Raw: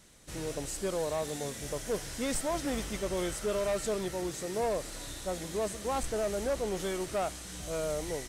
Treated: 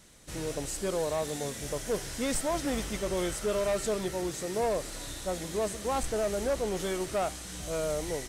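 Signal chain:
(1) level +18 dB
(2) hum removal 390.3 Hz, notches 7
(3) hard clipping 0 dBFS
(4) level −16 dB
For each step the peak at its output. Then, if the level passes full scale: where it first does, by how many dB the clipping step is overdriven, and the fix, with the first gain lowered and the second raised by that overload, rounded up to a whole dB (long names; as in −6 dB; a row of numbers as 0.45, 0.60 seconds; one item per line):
−5.5, −5.0, −5.0, −21.0 dBFS
no step passes full scale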